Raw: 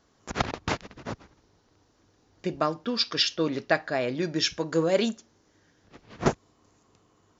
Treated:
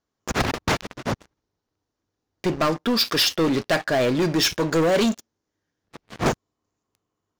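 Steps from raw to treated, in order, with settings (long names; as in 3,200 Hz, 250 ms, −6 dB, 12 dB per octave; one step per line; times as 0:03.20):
leveller curve on the samples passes 5
level −7 dB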